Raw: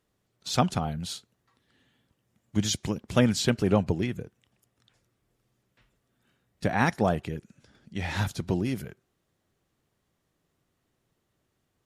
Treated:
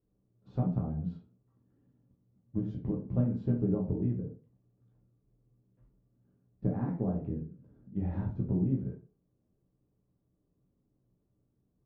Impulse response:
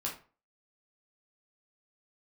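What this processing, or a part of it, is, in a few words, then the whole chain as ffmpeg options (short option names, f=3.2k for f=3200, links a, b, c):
television next door: -filter_complex "[0:a]acompressor=threshold=-27dB:ratio=4,lowpass=400[a];[1:a]atrim=start_sample=2205[b];[a][b]afir=irnorm=-1:irlink=0"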